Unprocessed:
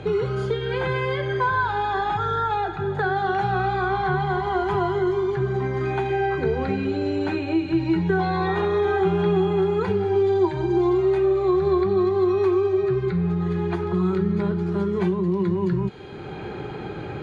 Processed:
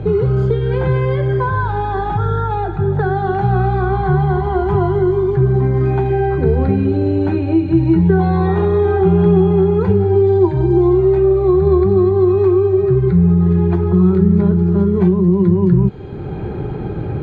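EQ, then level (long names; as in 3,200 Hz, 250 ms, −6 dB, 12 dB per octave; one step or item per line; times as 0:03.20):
tilt shelving filter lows +6.5 dB, about 1,300 Hz
low-shelf EQ 150 Hz +12 dB
0.0 dB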